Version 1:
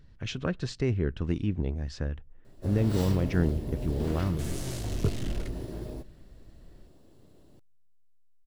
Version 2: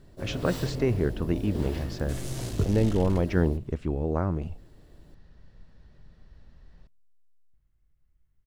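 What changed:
speech: add parametric band 700 Hz +7 dB 2.1 octaves
first sound: entry −2.45 s
second sound: entry −2.30 s

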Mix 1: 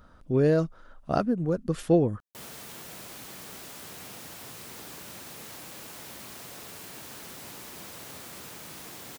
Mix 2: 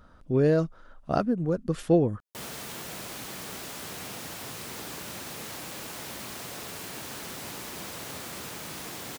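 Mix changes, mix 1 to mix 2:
background +5.5 dB
master: add high-shelf EQ 10,000 Hz −4 dB

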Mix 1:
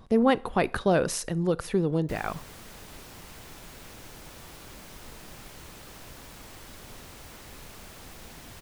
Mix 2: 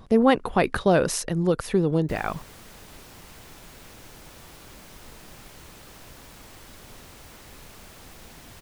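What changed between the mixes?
speech +5.0 dB
reverb: off

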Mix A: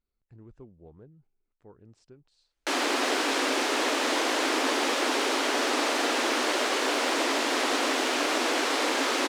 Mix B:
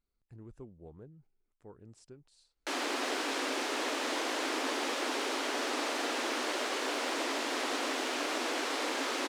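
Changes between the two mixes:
speech: remove low-pass filter 5,100 Hz 12 dB per octave
background −7.5 dB

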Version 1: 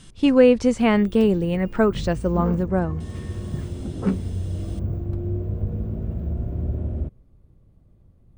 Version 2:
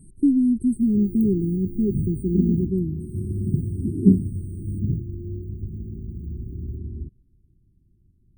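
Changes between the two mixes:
first sound −6.0 dB
second sound +8.0 dB
master: add linear-phase brick-wall band-stop 410–8,100 Hz

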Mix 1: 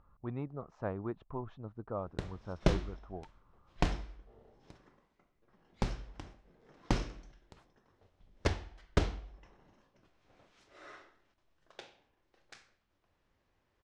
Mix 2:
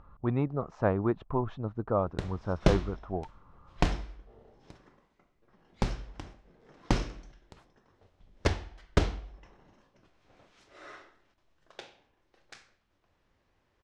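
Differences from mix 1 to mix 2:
speech +10.5 dB
background +4.0 dB

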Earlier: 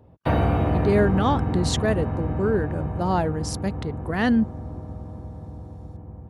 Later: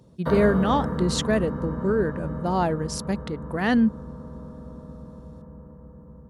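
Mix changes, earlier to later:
speech: entry −0.55 s
background: add phaser with its sweep stopped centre 500 Hz, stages 8

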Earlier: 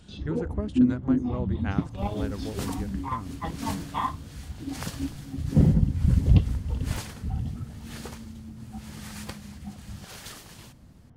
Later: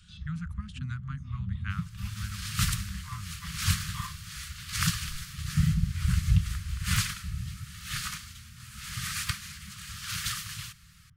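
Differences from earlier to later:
first sound −4.5 dB
second sound +10.5 dB
master: add Chebyshev band-stop filter 180–1,200 Hz, order 4

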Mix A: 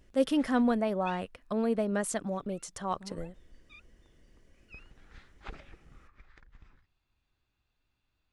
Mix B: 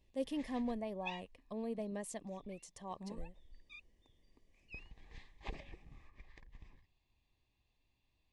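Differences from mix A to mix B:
speech −12.0 dB
master: add Butterworth band-reject 1,400 Hz, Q 2.3

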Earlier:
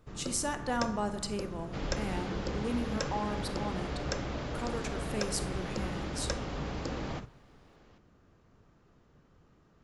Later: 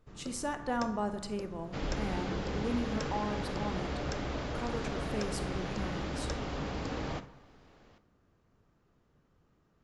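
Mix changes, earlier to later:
speech: add high-shelf EQ 3,000 Hz −9.5 dB
first sound −6.5 dB
second sound: send +9.0 dB

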